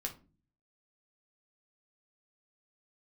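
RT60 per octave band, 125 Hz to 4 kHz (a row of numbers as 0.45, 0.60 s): 0.80, 0.65, 0.40, 0.30, 0.25, 0.20 s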